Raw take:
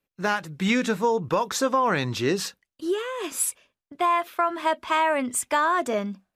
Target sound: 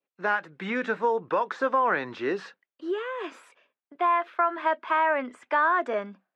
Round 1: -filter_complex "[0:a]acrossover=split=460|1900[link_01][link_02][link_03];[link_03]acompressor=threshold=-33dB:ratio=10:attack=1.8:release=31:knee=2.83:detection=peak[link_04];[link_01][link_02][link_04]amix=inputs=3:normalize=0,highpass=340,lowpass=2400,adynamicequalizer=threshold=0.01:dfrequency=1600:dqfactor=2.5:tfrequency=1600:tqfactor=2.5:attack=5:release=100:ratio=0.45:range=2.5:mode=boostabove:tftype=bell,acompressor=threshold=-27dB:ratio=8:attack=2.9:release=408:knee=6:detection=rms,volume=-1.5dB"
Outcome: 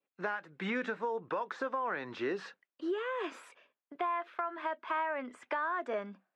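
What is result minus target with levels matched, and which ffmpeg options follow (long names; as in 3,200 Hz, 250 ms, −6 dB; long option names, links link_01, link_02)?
downward compressor: peak gain reduction +13 dB
-filter_complex "[0:a]acrossover=split=460|1900[link_01][link_02][link_03];[link_03]acompressor=threshold=-33dB:ratio=10:attack=1.8:release=31:knee=2.83:detection=peak[link_04];[link_01][link_02][link_04]amix=inputs=3:normalize=0,highpass=340,lowpass=2400,adynamicequalizer=threshold=0.01:dfrequency=1600:dqfactor=2.5:tfrequency=1600:tqfactor=2.5:attack=5:release=100:ratio=0.45:range=2.5:mode=boostabove:tftype=bell,volume=-1.5dB"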